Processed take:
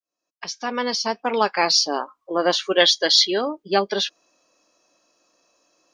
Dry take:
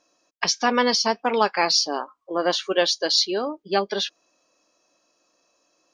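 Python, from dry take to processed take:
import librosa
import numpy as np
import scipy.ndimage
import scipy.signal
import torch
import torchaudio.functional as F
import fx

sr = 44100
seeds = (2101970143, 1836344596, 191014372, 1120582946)

y = fx.fade_in_head(x, sr, length_s=1.85)
y = fx.small_body(y, sr, hz=(2000.0, 3300.0), ring_ms=20, db=17, at=(2.8, 3.41))
y = F.gain(torch.from_numpy(y), 2.5).numpy()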